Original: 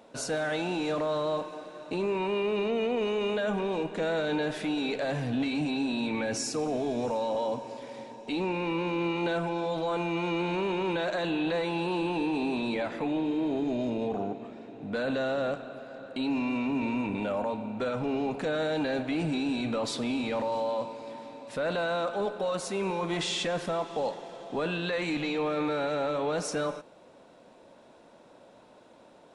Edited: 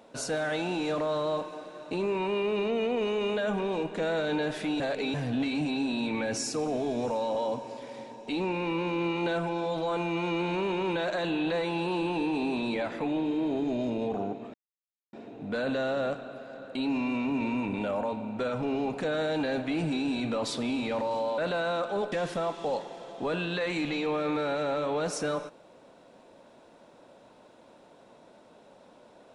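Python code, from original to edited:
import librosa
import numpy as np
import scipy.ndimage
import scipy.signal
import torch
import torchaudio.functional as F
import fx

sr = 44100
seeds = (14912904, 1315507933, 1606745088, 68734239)

y = fx.edit(x, sr, fx.reverse_span(start_s=4.8, length_s=0.34),
    fx.insert_silence(at_s=14.54, length_s=0.59),
    fx.cut(start_s=20.79, length_s=0.83),
    fx.cut(start_s=22.36, length_s=1.08), tone=tone)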